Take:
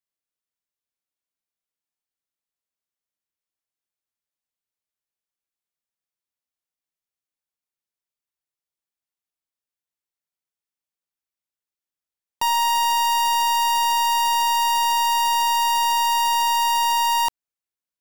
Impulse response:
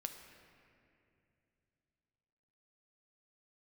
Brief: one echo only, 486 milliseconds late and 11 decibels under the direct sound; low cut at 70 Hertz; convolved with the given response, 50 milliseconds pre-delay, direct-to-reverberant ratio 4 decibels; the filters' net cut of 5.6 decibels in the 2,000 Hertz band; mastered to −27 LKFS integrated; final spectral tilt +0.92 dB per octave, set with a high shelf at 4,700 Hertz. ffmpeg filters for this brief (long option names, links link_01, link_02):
-filter_complex "[0:a]highpass=70,equalizer=frequency=2000:width_type=o:gain=-5.5,highshelf=frequency=4700:gain=-8.5,aecho=1:1:486:0.282,asplit=2[link_01][link_02];[1:a]atrim=start_sample=2205,adelay=50[link_03];[link_02][link_03]afir=irnorm=-1:irlink=0,volume=-1.5dB[link_04];[link_01][link_04]amix=inputs=2:normalize=0,volume=-11dB"